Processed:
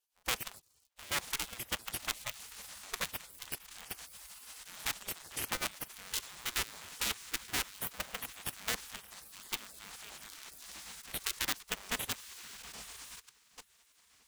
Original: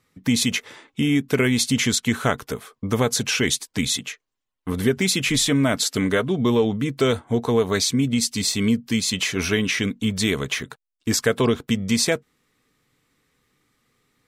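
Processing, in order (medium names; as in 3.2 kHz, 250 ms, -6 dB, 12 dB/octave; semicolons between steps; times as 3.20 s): cycle switcher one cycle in 2, inverted; high-pass 55 Hz 24 dB/octave; treble shelf 4.7 kHz +6 dB; on a send: echo that smears into a reverb 960 ms, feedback 64%, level -14.5 dB; on the sum: level held to a coarse grid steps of 18 dB; spectral gate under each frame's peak -15 dB weak; bass shelf 180 Hz +6.5 dB; trim -7 dB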